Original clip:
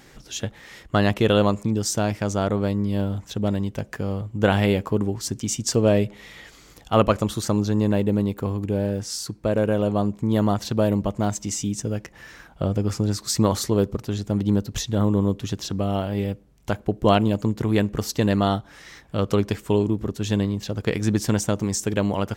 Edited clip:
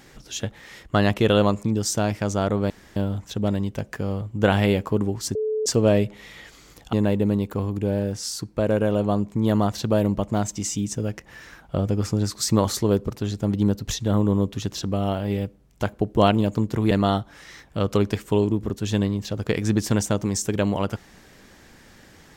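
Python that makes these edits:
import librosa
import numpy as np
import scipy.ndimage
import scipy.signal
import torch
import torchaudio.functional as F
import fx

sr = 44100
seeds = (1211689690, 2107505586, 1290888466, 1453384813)

y = fx.edit(x, sr, fx.room_tone_fill(start_s=2.7, length_s=0.26),
    fx.bleep(start_s=5.35, length_s=0.31, hz=433.0, db=-21.5),
    fx.cut(start_s=6.93, length_s=0.87),
    fx.cut(start_s=17.78, length_s=0.51), tone=tone)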